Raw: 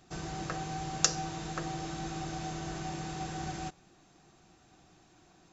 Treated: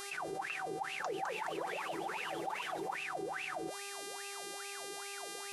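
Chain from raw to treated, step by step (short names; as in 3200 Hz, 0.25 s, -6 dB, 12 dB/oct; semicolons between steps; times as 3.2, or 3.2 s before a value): wah 2.4 Hz 390–2700 Hz, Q 18; buzz 400 Hz, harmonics 29, -75 dBFS -2 dB/oct; 0.76–2.96 echoes that change speed 0.239 s, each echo +2 st, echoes 3, each echo -6 dB; fast leveller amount 70%; gain +9.5 dB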